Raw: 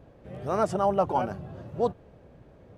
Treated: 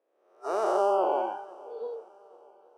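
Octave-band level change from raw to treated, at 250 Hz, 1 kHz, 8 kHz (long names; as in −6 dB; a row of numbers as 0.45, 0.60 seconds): −6.5 dB, −0.5 dB, can't be measured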